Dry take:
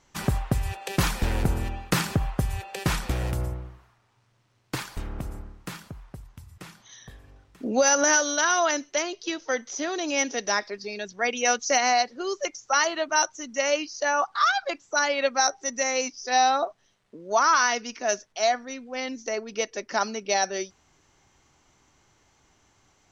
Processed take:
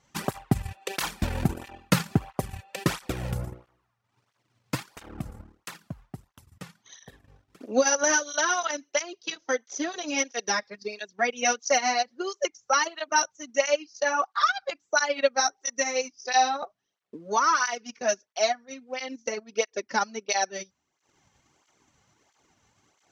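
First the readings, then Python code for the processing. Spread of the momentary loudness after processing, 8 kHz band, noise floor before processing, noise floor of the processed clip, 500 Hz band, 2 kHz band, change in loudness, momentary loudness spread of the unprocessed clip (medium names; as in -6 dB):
17 LU, -2.0 dB, -65 dBFS, -78 dBFS, -1.0 dB, -2.0 dB, -1.5 dB, 14 LU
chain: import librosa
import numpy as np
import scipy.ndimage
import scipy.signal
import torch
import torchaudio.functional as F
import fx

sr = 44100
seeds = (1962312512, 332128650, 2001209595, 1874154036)

y = fx.transient(x, sr, attack_db=5, sustain_db=-12)
y = fx.flanger_cancel(y, sr, hz=1.5, depth_ms=3.3)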